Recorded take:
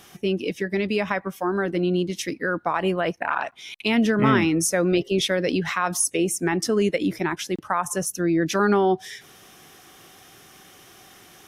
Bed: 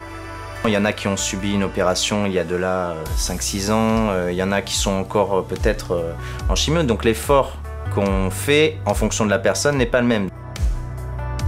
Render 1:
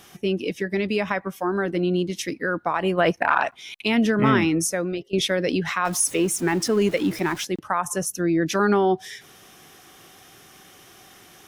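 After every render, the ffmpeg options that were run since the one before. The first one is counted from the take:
ffmpeg -i in.wav -filter_complex "[0:a]asplit=3[link_01][link_02][link_03];[link_01]afade=type=out:start_time=2.97:duration=0.02[link_04];[link_02]acontrast=34,afade=type=in:start_time=2.97:duration=0.02,afade=type=out:start_time=3.55:duration=0.02[link_05];[link_03]afade=type=in:start_time=3.55:duration=0.02[link_06];[link_04][link_05][link_06]amix=inputs=3:normalize=0,asettb=1/sr,asplit=3[link_07][link_08][link_09];[link_07]atrim=end=5.854[link_10];[link_08]atrim=start=5.85:end=7.45,asetpts=PTS-STARTPTS,afade=type=in:duration=0.004:curve=qsin,afade=type=out:start_time=1.596:duration=0.004:curve=qsin,aeval=exprs='val(0)+0.5*0.02*sgn(val(0))':channel_layout=same[link_11];[link_09]atrim=start=7.446[link_12];[link_10][link_11]acrossfade=duration=0.004:curve1=hsin:curve2=qsin[link_13];[link_13][link_12]acrossfade=duration=0.004:curve1=qsin:curve2=hsin,asplit=2[link_14][link_15];[link_14]atrim=end=5.13,asetpts=PTS-STARTPTS,afade=type=out:start_time=4.55:duration=0.58:silence=0.11885[link_16];[link_15]atrim=start=5.13,asetpts=PTS-STARTPTS,afade=type=in:duration=0.004:curve=hsin:silence=0.11885[link_17];[link_16][link_17]concat=n=2:v=0:a=1" out.wav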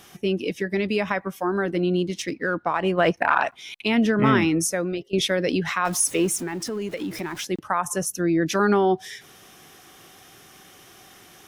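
ffmpeg -i in.wav -filter_complex "[0:a]asettb=1/sr,asplit=3[link_01][link_02][link_03];[link_01]atrim=end=2.144[link_04];[link_02]atrim=start=2.14:end=3.17,asetpts=PTS-STARTPTS,afade=type=in:duration=0.004:curve=qsin,afade=type=out:start_time=1.026:duration=0.004:curve=qsin,adynamicsmooth=sensitivity=5.5:basefreq=7300[link_05];[link_03]atrim=start=3.166[link_06];[link_04][link_05]acrossfade=duration=0.004:curve1=hsin:curve2=qsin[link_07];[link_07][link_06]acrossfade=duration=0.004:curve1=qsin:curve2=hsin,asettb=1/sr,asplit=3[link_08][link_09][link_10];[link_08]atrim=end=3.754[link_11];[link_09]atrim=start=3.75:end=4.24,asetpts=PTS-STARTPTS,afade=type=in:duration=0.004:curve=qsin,afade=type=out:start_time=0.486:duration=0.004:curve=qsin,highshelf=frequency=5600:gain=-5[link_12];[link_10]atrim=start=4.236[link_13];[link_11][link_12]acrossfade=duration=0.004:curve1=hsin:curve2=qsin[link_14];[link_14][link_13]acrossfade=duration=0.004:curve1=qsin:curve2=hsin,asettb=1/sr,asplit=3[link_15][link_16][link_17];[link_15]atrim=end=6.414[link_18];[link_16]atrim=start=6.41:end=7.47,asetpts=PTS-STARTPTS,afade=type=in:duration=0.004:curve=qsin,afade=type=out:start_time=1.056:duration=0.004:curve=qsin,acompressor=threshold=-27dB:ratio=4:attack=3.2:release=140:knee=1:detection=peak[link_19];[link_17]atrim=start=7.466[link_20];[link_18][link_19]acrossfade=duration=0.004:curve1=hsin:curve2=qsin[link_21];[link_21][link_20]acrossfade=duration=0.004:curve1=qsin:curve2=hsin" out.wav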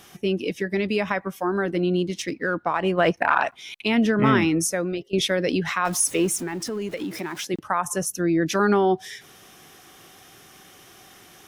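ffmpeg -i in.wav -filter_complex "[0:a]asettb=1/sr,asplit=3[link_01][link_02][link_03];[link_01]atrim=end=7.044[link_04];[link_02]atrim=start=7.04:end=7.54,asetpts=PTS-STARTPTS,afade=type=in:duration=0.004:curve=qsin,afade=type=out:start_time=0.496:duration=0.004:curve=qsin,highpass=150[link_05];[link_03]atrim=start=7.536[link_06];[link_04][link_05]acrossfade=duration=0.004:curve1=hsin:curve2=qsin[link_07];[link_07][link_06]acrossfade=duration=0.004:curve1=qsin:curve2=hsin" out.wav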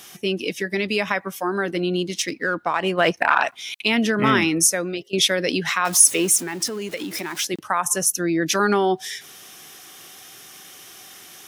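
ffmpeg -i in.wav -af "highpass=frequency=140:poles=1,highshelf=frequency=2200:gain=9.5" out.wav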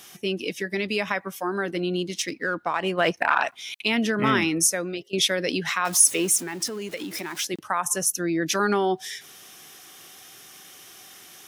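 ffmpeg -i in.wav -af "volume=-3.5dB" out.wav

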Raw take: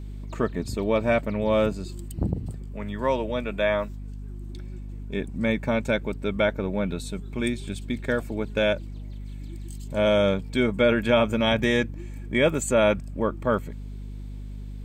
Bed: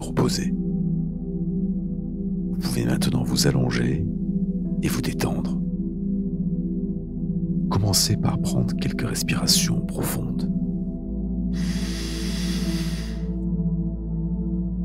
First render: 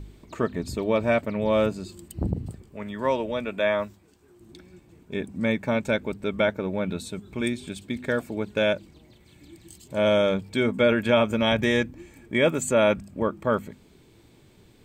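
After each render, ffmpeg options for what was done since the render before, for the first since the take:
ffmpeg -i in.wav -af "bandreject=frequency=50:width_type=h:width=4,bandreject=frequency=100:width_type=h:width=4,bandreject=frequency=150:width_type=h:width=4,bandreject=frequency=200:width_type=h:width=4,bandreject=frequency=250:width_type=h:width=4" out.wav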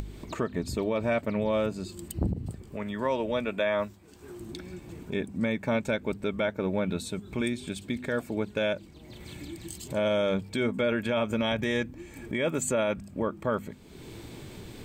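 ffmpeg -i in.wav -af "acompressor=mode=upward:threshold=-31dB:ratio=2.5,alimiter=limit=-18dB:level=0:latency=1:release=144" out.wav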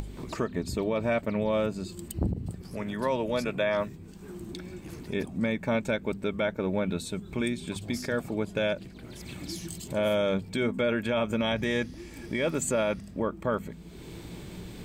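ffmpeg -i in.wav -i bed.wav -filter_complex "[1:a]volume=-22dB[link_01];[0:a][link_01]amix=inputs=2:normalize=0" out.wav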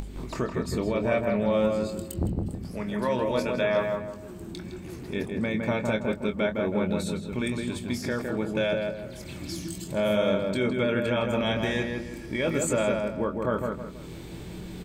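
ffmpeg -i in.wav -filter_complex "[0:a]asplit=2[link_01][link_02];[link_02]adelay=24,volume=-8.5dB[link_03];[link_01][link_03]amix=inputs=2:normalize=0,asplit=2[link_04][link_05];[link_05]adelay=161,lowpass=frequency=1900:poles=1,volume=-3dB,asplit=2[link_06][link_07];[link_07]adelay=161,lowpass=frequency=1900:poles=1,volume=0.38,asplit=2[link_08][link_09];[link_09]adelay=161,lowpass=frequency=1900:poles=1,volume=0.38,asplit=2[link_10][link_11];[link_11]adelay=161,lowpass=frequency=1900:poles=1,volume=0.38,asplit=2[link_12][link_13];[link_13]adelay=161,lowpass=frequency=1900:poles=1,volume=0.38[link_14];[link_06][link_08][link_10][link_12][link_14]amix=inputs=5:normalize=0[link_15];[link_04][link_15]amix=inputs=2:normalize=0" out.wav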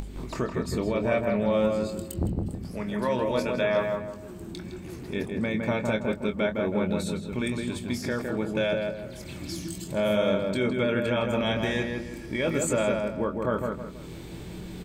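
ffmpeg -i in.wav -af anull out.wav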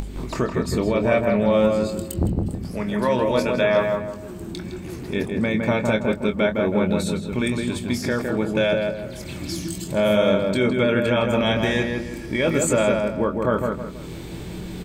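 ffmpeg -i in.wav -af "volume=6dB" out.wav

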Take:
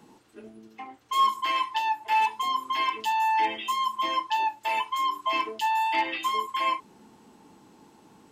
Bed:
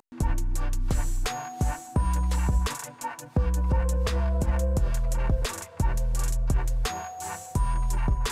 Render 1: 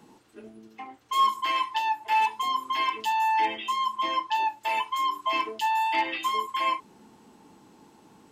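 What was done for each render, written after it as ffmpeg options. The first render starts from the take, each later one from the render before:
ffmpeg -i in.wav -filter_complex "[0:a]asettb=1/sr,asplit=3[link_01][link_02][link_03];[link_01]atrim=end=3.554[link_04];[link_02]atrim=start=3.55:end=4.35,asetpts=PTS-STARTPTS,afade=type=in:duration=0.004:curve=qsin,afade=type=out:start_time=0.796:duration=0.004:curve=qsin,highshelf=frequency=9900:gain=-10.5[link_05];[link_03]atrim=start=4.346[link_06];[link_04][link_05]acrossfade=duration=0.004:curve1=hsin:curve2=qsin[link_07];[link_07][link_06]acrossfade=duration=0.004:curve1=qsin:curve2=hsin" out.wav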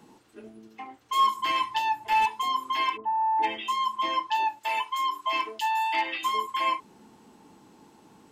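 ffmpeg -i in.wav -filter_complex "[0:a]asettb=1/sr,asplit=3[link_01][link_02][link_03];[link_01]atrim=end=1.404[link_04];[link_02]atrim=start=1.4:end=2.26,asetpts=PTS-STARTPTS,afade=type=in:duration=0.004:curve=qsin,afade=type=out:start_time=0.856:duration=0.004:curve=qsin,bass=frequency=250:gain=11,treble=frequency=4000:gain=2[link_05];[link_03]atrim=start=2.256[link_06];[link_04][link_05]acrossfade=duration=0.004:curve1=hsin:curve2=qsin[link_07];[link_07][link_06]acrossfade=duration=0.004:curve1=qsin:curve2=hsin,asplit=3[link_08][link_09][link_10];[link_08]afade=type=out:start_time=2.96:duration=0.02[link_11];[link_09]lowpass=frequency=1100:width=0.5412,lowpass=frequency=1100:width=1.3066,afade=type=in:start_time=2.96:duration=0.02,afade=type=out:start_time=3.42:duration=0.02[link_12];[link_10]afade=type=in:start_time=3.42:duration=0.02[link_13];[link_11][link_12][link_13]amix=inputs=3:normalize=0,asettb=1/sr,asplit=3[link_14][link_15][link_16];[link_14]atrim=end=4.594[link_17];[link_15]atrim=start=4.59:end=6.23,asetpts=PTS-STARTPTS,afade=type=in:duration=0.004:curve=qsin,afade=type=out:start_time=1.636:duration=0.004:curve=qsin,lowshelf=frequency=410:gain=-7.5[link_18];[link_16]atrim=start=6.226[link_19];[link_17][link_18]acrossfade=duration=0.004:curve1=hsin:curve2=qsin[link_20];[link_20][link_19]acrossfade=duration=0.004:curve1=qsin:curve2=hsin" out.wav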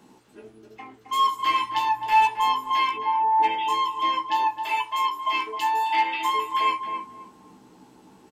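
ffmpeg -i in.wav -filter_complex "[0:a]asplit=2[link_01][link_02];[link_02]adelay=16,volume=-5dB[link_03];[link_01][link_03]amix=inputs=2:normalize=0,asplit=2[link_04][link_05];[link_05]adelay=266,lowpass=frequency=970:poles=1,volume=-4dB,asplit=2[link_06][link_07];[link_07]adelay=266,lowpass=frequency=970:poles=1,volume=0.31,asplit=2[link_08][link_09];[link_09]adelay=266,lowpass=frequency=970:poles=1,volume=0.31,asplit=2[link_10][link_11];[link_11]adelay=266,lowpass=frequency=970:poles=1,volume=0.31[link_12];[link_04][link_06][link_08][link_10][link_12]amix=inputs=5:normalize=0" out.wav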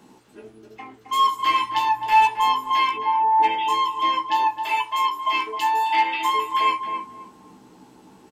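ffmpeg -i in.wav -af "volume=2.5dB" out.wav

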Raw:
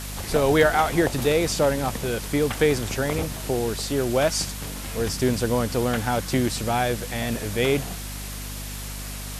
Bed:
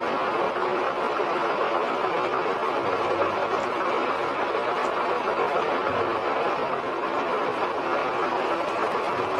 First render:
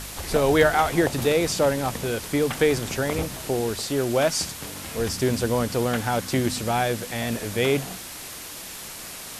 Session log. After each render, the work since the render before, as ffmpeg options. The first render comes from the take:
ffmpeg -i in.wav -af "bandreject=frequency=50:width_type=h:width=4,bandreject=frequency=100:width_type=h:width=4,bandreject=frequency=150:width_type=h:width=4,bandreject=frequency=200:width_type=h:width=4,bandreject=frequency=250:width_type=h:width=4" out.wav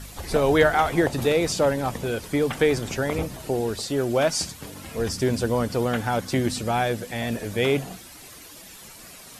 ffmpeg -i in.wav -af "afftdn=noise_reduction=10:noise_floor=-38" out.wav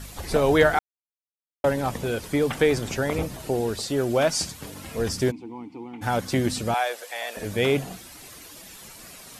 ffmpeg -i in.wav -filter_complex "[0:a]asplit=3[link_01][link_02][link_03];[link_01]afade=type=out:start_time=5.3:duration=0.02[link_04];[link_02]asplit=3[link_05][link_06][link_07];[link_05]bandpass=frequency=300:width_type=q:width=8,volume=0dB[link_08];[link_06]bandpass=frequency=870:width_type=q:width=8,volume=-6dB[link_09];[link_07]bandpass=frequency=2240:width_type=q:width=8,volume=-9dB[link_10];[link_08][link_09][link_10]amix=inputs=3:normalize=0,afade=type=in:start_time=5.3:duration=0.02,afade=type=out:start_time=6.01:duration=0.02[link_11];[link_03]afade=type=in:start_time=6.01:duration=0.02[link_12];[link_04][link_11][link_12]amix=inputs=3:normalize=0,asettb=1/sr,asplit=3[link_13][link_14][link_15];[link_13]atrim=end=6.744[link_16];[link_14]atrim=start=6.74:end=7.37,asetpts=PTS-STARTPTS,afade=type=in:duration=0.004:curve=qsin,afade=type=out:start_time=0.626:duration=0.004:curve=qsin,highpass=frequency=550:width=0.5412,highpass=frequency=550:width=1.3066[link_17];[link_15]atrim=start=7.366[link_18];[link_16][link_17]acrossfade=duration=0.004:curve1=hsin:curve2=qsin[link_19];[link_19][link_18]acrossfade=duration=0.004:curve1=qsin:curve2=hsin,asplit=3[link_20][link_21][link_22];[link_20]atrim=end=0.79,asetpts=PTS-STARTPTS,afade=type=out:start_time=0.786:duration=0.004:curve=hsin[link_23];[link_21]atrim=start=0.79:end=1.64,asetpts=PTS-STARTPTS,volume=0[link_24];[link_22]atrim=start=1.64,asetpts=PTS-STARTPTS,afade=type=in:duration=0.004:curve=hsin[link_25];[link_23][link_24][link_25]concat=n=3:v=0:a=1" out.wav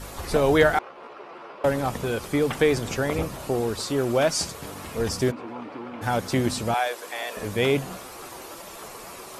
ffmpeg -i in.wav -i bed.wav -filter_complex "[1:a]volume=-17dB[link_01];[0:a][link_01]amix=inputs=2:normalize=0" out.wav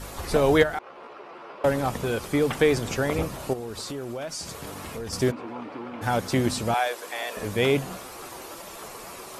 ffmpeg -i in.wav -filter_complex "[0:a]asplit=3[link_01][link_02][link_03];[link_01]afade=type=out:start_time=0.62:duration=0.02[link_04];[link_02]acompressor=threshold=-40dB:ratio=1.5:attack=3.2:release=140:knee=1:detection=peak,afade=type=in:start_time=0.62:duration=0.02,afade=type=out:start_time=1.46:duration=0.02[link_05];[link_03]afade=type=in:start_time=1.46:duration=0.02[link_06];[link_04][link_05][link_06]amix=inputs=3:normalize=0,asettb=1/sr,asplit=3[link_07][link_08][link_09];[link_07]atrim=end=3.534[link_10];[link_08]atrim=start=3.53:end=5.13,asetpts=PTS-STARTPTS,afade=type=in:duration=0.004:curve=qsin,afade=type=out:start_time=1.596:duration=0.004:curve=qsin,acompressor=threshold=-31dB:ratio=5:attack=3.2:release=140:knee=1:detection=peak[link_11];[link_09]atrim=start=5.126[link_12];[link_10][link_11]acrossfade=duration=0.004:curve1=hsin:curve2=qsin[link_13];[link_13][link_12]acrossfade=duration=0.004:curve1=qsin:curve2=hsin" out.wav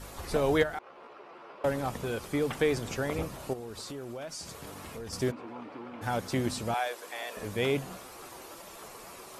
ffmpeg -i in.wav -af "volume=-6.5dB" out.wav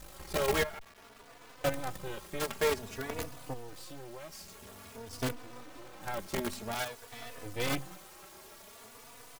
ffmpeg -i in.wav -filter_complex "[0:a]acrusher=bits=5:dc=4:mix=0:aa=0.000001,asplit=2[link_01][link_02];[link_02]adelay=3.4,afreqshift=0.51[link_03];[link_01][link_03]amix=inputs=2:normalize=1" out.wav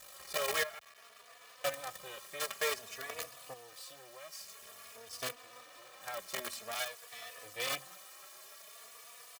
ffmpeg -i in.wav -af "highpass=frequency=1300:poles=1,aecho=1:1:1.7:0.53" out.wav

